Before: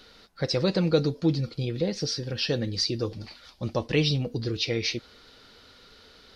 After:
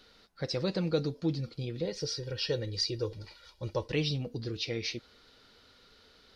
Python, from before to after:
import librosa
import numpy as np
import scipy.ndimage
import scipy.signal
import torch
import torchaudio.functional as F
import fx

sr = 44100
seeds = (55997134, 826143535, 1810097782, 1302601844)

y = fx.comb(x, sr, ms=2.1, depth=0.68, at=(1.85, 3.92))
y = F.gain(torch.from_numpy(y), -7.0).numpy()